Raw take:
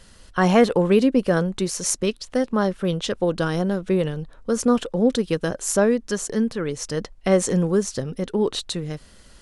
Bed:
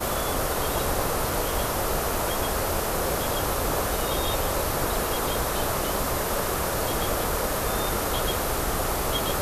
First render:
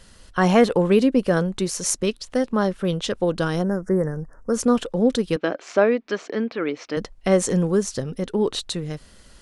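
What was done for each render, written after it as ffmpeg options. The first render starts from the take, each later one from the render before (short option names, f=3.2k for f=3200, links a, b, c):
-filter_complex "[0:a]asplit=3[a][b][c];[a]afade=t=out:st=3.62:d=0.02[d];[b]asuperstop=centerf=3200:order=12:qfactor=0.98,afade=t=in:st=3.62:d=0.02,afade=t=out:st=4.52:d=0.02[e];[c]afade=t=in:st=4.52:d=0.02[f];[d][e][f]amix=inputs=3:normalize=0,asettb=1/sr,asplit=3[g][h][i];[g]atrim=end=5.364[j];[h]atrim=start=5.36:end=6.97,asetpts=PTS-STARTPTS,afade=t=in:d=0.004:c=qsin,afade=t=out:st=1.606:d=0.004:c=qsin,highpass=290,equalizer=f=300:t=q:w=4:g=8,equalizer=f=690:t=q:w=4:g=5,equalizer=f=1.3k:t=q:w=4:g=4,equalizer=f=2.3k:t=q:w=4:g=9,lowpass=f=4.2k:w=0.5412,lowpass=f=4.2k:w=1.3066[k];[i]atrim=start=6.966[l];[j][k]acrossfade=d=0.004:c1=hsin:c2=qsin[m];[m][l]acrossfade=d=0.004:c1=qsin:c2=hsin"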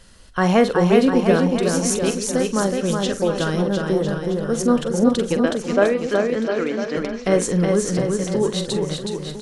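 -filter_complex "[0:a]asplit=2[a][b];[b]adelay=45,volume=-12dB[c];[a][c]amix=inputs=2:normalize=0,aecho=1:1:370|703|1003|1272|1515:0.631|0.398|0.251|0.158|0.1"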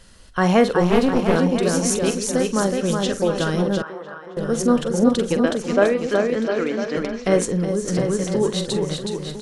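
-filter_complex "[0:a]asplit=3[a][b][c];[a]afade=t=out:st=0.81:d=0.02[d];[b]aeval=exprs='clip(val(0),-1,0.0794)':c=same,afade=t=in:st=0.81:d=0.02,afade=t=out:st=1.36:d=0.02[e];[c]afade=t=in:st=1.36:d=0.02[f];[d][e][f]amix=inputs=3:normalize=0,asettb=1/sr,asplit=3[g][h][i];[g]atrim=end=3.824[j];[h]atrim=start=3.82:end=4.37,asetpts=PTS-STARTPTS,afade=t=in:d=0.004:c=qsin,afade=t=out:st=0.546:d=0.004:c=qsin,bandpass=f=1.2k:t=q:w=2[k];[i]atrim=start=4.366[l];[j][k]acrossfade=d=0.004:c1=hsin:c2=qsin[m];[m][l]acrossfade=d=0.004:c1=qsin:c2=hsin,asettb=1/sr,asplit=3[n][o][p];[n]atrim=end=7.454[q];[o]atrim=start=7.45:end=7.88,asetpts=PTS-STARTPTS,afade=t=in:d=0.004:c=qsin,afade=t=out:st=0.426:d=0.004:c=qsin,acrossover=split=710|4800[r][s][t];[r]acompressor=threshold=-19dB:ratio=4[u];[s]acompressor=threshold=-41dB:ratio=4[v];[t]acompressor=threshold=-38dB:ratio=4[w];[u][v][w]amix=inputs=3:normalize=0[x];[p]atrim=start=7.876[y];[q][x]acrossfade=d=0.004:c1=hsin:c2=qsin[z];[z][y]acrossfade=d=0.004:c1=qsin:c2=hsin"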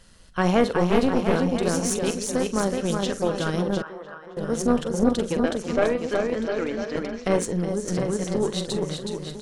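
-af "tremolo=f=170:d=0.4,aeval=exprs='(tanh(2.82*val(0)+0.55)-tanh(0.55))/2.82':c=same"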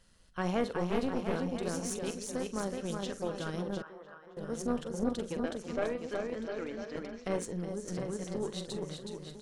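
-af "volume=-11.5dB"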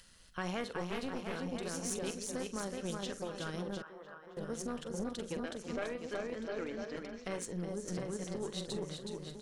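-filter_complex "[0:a]acrossover=split=1300[a][b];[a]alimiter=level_in=5dB:limit=-24dB:level=0:latency=1:release=343,volume=-5dB[c];[b]acompressor=mode=upward:threshold=-55dB:ratio=2.5[d];[c][d]amix=inputs=2:normalize=0"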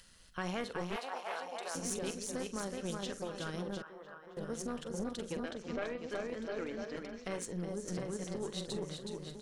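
-filter_complex "[0:a]asettb=1/sr,asplit=3[a][b][c];[a]atrim=end=0.964[d];[b]atrim=start=0.96:end=1.75,asetpts=PTS-STARTPTS,afade=t=in:d=0.004:c=qsin,afade=t=out:st=0.786:d=0.004:c=qsin,highpass=f=760:t=q:w=2.4[e];[c]atrim=start=1.746[f];[d][e]acrossfade=d=0.004:c1=hsin:c2=qsin[g];[g][f]acrossfade=d=0.004:c1=qsin:c2=hsin,asettb=1/sr,asplit=3[h][i][j];[h]atrim=end=5.514[k];[i]atrim=start=5.51:end=6.1,asetpts=PTS-STARTPTS,afade=t=in:d=0.004:c=qsin,afade=t=out:st=0.586:d=0.004:c=qsin,lowpass=5.3k[l];[j]atrim=start=6.096[m];[k][l]acrossfade=d=0.004:c1=hsin:c2=qsin[n];[n][m]acrossfade=d=0.004:c1=qsin:c2=hsin"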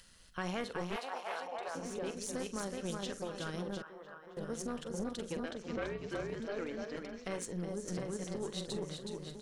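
-filter_complex "[0:a]asettb=1/sr,asplit=3[a][b][c];[a]atrim=end=1.474[d];[b]atrim=start=1.47:end=2.17,asetpts=PTS-STARTPTS,afade=t=in:d=0.004:c=qsin,afade=t=out:st=0.696:d=0.004:c=qsin,asplit=2[e][f];[f]highpass=f=720:p=1,volume=11dB,asoftclip=type=tanh:threshold=-23.5dB[g];[e][g]amix=inputs=2:normalize=0,lowpass=f=1k:p=1,volume=-6dB[h];[c]atrim=start=2.166[i];[d][h]acrossfade=d=0.004:c1=hsin:c2=qsin[j];[j][i]acrossfade=d=0.004:c1=qsin:c2=hsin,asettb=1/sr,asplit=3[k][l][m];[k]atrim=end=5.764[n];[l]atrim=start=5.76:end=6.4,asetpts=PTS-STARTPTS,afade=t=in:d=0.004:c=qsin,afade=t=out:st=0.636:d=0.004:c=qsin,afreqshift=-61[o];[m]atrim=start=6.396[p];[n][o]acrossfade=d=0.004:c1=hsin:c2=qsin[q];[q][p]acrossfade=d=0.004:c1=qsin:c2=hsin"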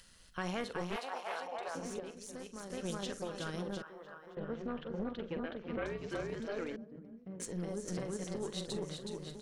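-filter_complex "[0:a]asettb=1/sr,asplit=3[a][b][c];[a]atrim=end=4.354[d];[b]atrim=start=4.35:end=5.86,asetpts=PTS-STARTPTS,afade=t=in:d=0.004:c=qsin,afade=t=out:st=1.506:d=0.004:c=qsin,lowpass=f=3.1k:w=0.5412,lowpass=f=3.1k:w=1.3066[e];[c]atrim=start=5.856[f];[d][e]acrossfade=d=0.004:c1=hsin:c2=qsin[g];[g][f]acrossfade=d=0.004:c1=qsin:c2=hsin,asettb=1/sr,asplit=3[h][i][j];[h]atrim=end=6.764[k];[i]atrim=start=6.76:end=7.4,asetpts=PTS-STARTPTS,afade=t=in:d=0.004:c=qsin,afade=t=out:st=0.636:d=0.004:c=qsin,bandpass=f=170:t=q:w=1.8[l];[j]atrim=start=7.396[m];[k][l]acrossfade=d=0.004:c1=hsin:c2=qsin[n];[n][m]acrossfade=d=0.004:c1=qsin:c2=hsin,asplit=3[o][p][q];[o]atrim=end=2.002[r];[p]atrim=start=1.998:end=2.702,asetpts=PTS-STARTPTS,volume=-7.5dB[s];[q]atrim=start=2.698[t];[r][s]acrossfade=d=0.004:c1=hsin:c2=hsin[u];[u][t]acrossfade=d=0.004:c1=hsin:c2=hsin"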